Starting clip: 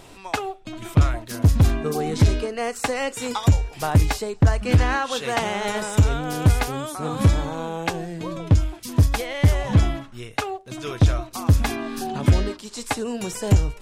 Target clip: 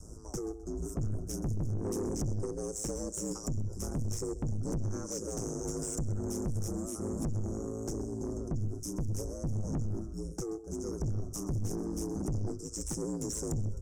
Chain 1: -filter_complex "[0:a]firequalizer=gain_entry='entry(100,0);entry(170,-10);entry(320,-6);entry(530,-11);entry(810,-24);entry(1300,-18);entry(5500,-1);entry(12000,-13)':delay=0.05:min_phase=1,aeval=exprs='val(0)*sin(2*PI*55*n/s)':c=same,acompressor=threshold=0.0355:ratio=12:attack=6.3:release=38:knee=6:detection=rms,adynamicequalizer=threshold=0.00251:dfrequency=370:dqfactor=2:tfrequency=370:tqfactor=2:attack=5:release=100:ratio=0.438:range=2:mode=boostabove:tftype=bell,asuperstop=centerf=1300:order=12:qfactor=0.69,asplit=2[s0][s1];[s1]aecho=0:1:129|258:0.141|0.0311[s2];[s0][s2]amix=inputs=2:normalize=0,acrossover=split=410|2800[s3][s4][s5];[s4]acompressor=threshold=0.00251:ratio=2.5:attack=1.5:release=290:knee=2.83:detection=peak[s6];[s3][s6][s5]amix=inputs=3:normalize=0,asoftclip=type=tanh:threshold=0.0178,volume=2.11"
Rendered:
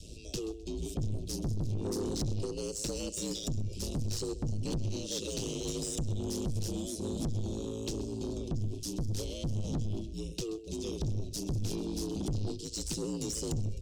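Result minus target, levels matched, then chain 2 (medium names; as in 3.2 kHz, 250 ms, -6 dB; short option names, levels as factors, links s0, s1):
4 kHz band +9.5 dB
-filter_complex "[0:a]firequalizer=gain_entry='entry(100,0);entry(170,-10);entry(320,-6);entry(530,-11);entry(810,-24);entry(1300,-18);entry(5500,-1);entry(12000,-13)':delay=0.05:min_phase=1,aeval=exprs='val(0)*sin(2*PI*55*n/s)':c=same,acompressor=threshold=0.0355:ratio=12:attack=6.3:release=38:knee=6:detection=rms,adynamicequalizer=threshold=0.00251:dfrequency=370:dqfactor=2:tfrequency=370:tqfactor=2:attack=5:release=100:ratio=0.438:range=2:mode=boostabove:tftype=bell,asuperstop=centerf=2900:order=12:qfactor=0.69,asplit=2[s0][s1];[s1]aecho=0:1:129|258:0.141|0.0311[s2];[s0][s2]amix=inputs=2:normalize=0,acrossover=split=410|2800[s3][s4][s5];[s4]acompressor=threshold=0.00251:ratio=2.5:attack=1.5:release=290:knee=2.83:detection=peak[s6];[s3][s6][s5]amix=inputs=3:normalize=0,asoftclip=type=tanh:threshold=0.0178,volume=2.11"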